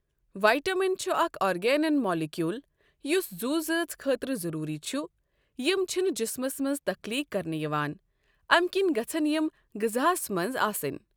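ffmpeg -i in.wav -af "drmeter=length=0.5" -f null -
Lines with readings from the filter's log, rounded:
Channel 1: DR: 15.1
Overall DR: 15.1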